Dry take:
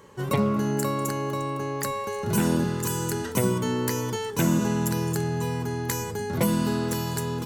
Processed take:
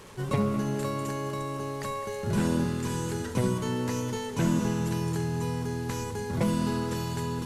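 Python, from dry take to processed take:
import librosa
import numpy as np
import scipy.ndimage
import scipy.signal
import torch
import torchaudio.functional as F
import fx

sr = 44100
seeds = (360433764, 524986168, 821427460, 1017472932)

p1 = fx.delta_mod(x, sr, bps=64000, step_db=-38.5)
p2 = fx.low_shelf(p1, sr, hz=86.0, db=10.5)
p3 = p2 + fx.echo_heads(p2, sr, ms=69, heads='first and third', feedback_pct=75, wet_db=-16, dry=0)
y = p3 * librosa.db_to_amplitude(-4.5)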